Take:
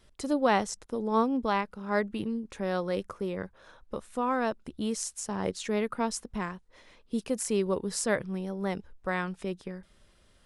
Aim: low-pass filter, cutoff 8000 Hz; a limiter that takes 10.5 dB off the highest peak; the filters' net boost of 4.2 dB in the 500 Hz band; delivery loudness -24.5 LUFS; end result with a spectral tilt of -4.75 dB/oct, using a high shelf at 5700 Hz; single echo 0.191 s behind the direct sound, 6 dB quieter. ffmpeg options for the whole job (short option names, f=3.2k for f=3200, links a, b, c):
-af "lowpass=8k,equalizer=f=500:t=o:g=5,highshelf=f=5.7k:g=3,alimiter=limit=-20dB:level=0:latency=1,aecho=1:1:191:0.501,volume=6.5dB"